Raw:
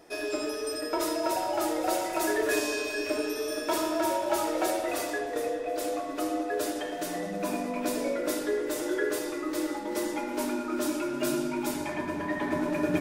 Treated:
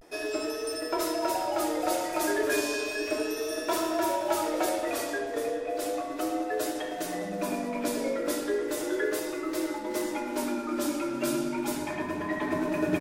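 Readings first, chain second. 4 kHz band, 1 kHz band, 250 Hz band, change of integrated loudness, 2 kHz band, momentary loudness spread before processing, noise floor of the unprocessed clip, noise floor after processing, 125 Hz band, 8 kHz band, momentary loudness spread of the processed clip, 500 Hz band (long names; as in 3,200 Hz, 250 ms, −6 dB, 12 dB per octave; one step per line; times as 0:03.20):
0.0 dB, 0.0 dB, 0.0 dB, 0.0 dB, 0.0 dB, 5 LU, −35 dBFS, −35 dBFS, 0.0 dB, 0.0 dB, 5 LU, 0.0 dB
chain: pitch vibrato 0.34 Hz 48 cents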